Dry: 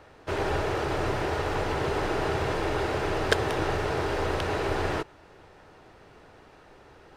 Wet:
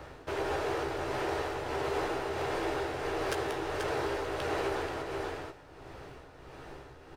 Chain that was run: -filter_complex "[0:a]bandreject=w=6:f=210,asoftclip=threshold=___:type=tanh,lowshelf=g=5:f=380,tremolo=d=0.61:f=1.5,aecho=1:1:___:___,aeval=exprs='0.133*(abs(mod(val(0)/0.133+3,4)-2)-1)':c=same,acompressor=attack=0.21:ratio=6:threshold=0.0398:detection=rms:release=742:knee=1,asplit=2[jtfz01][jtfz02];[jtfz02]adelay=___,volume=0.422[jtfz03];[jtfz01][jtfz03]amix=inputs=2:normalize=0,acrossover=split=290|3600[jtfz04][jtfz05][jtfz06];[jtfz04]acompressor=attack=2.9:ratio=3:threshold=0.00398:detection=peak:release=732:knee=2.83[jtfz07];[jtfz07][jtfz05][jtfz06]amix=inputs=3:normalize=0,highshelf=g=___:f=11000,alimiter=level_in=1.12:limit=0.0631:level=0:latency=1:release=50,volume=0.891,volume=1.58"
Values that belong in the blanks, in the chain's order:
0.15, 483, 0.282, 15, 5.5